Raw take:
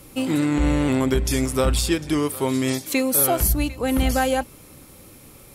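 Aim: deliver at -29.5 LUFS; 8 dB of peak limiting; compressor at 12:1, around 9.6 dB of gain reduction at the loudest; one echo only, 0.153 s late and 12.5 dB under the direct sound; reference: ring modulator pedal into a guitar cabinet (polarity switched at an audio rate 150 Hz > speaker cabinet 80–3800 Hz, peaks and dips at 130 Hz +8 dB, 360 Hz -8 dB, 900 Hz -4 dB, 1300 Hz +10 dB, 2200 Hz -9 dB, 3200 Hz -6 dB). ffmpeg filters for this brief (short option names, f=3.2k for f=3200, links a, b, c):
-af "acompressor=threshold=-25dB:ratio=12,alimiter=limit=-24dB:level=0:latency=1,aecho=1:1:153:0.237,aeval=exprs='val(0)*sgn(sin(2*PI*150*n/s))':c=same,highpass=80,equalizer=f=130:t=q:w=4:g=8,equalizer=f=360:t=q:w=4:g=-8,equalizer=f=900:t=q:w=4:g=-4,equalizer=f=1.3k:t=q:w=4:g=10,equalizer=f=2.2k:t=q:w=4:g=-9,equalizer=f=3.2k:t=q:w=4:g=-6,lowpass=f=3.8k:w=0.5412,lowpass=f=3.8k:w=1.3066,volume=3dB"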